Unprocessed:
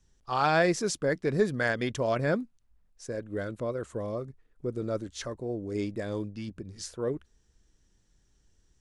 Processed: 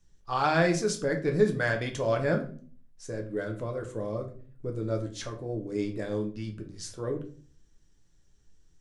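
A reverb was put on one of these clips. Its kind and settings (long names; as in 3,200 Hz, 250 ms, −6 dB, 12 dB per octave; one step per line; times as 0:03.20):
rectangular room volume 34 cubic metres, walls mixed, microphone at 0.42 metres
level −2 dB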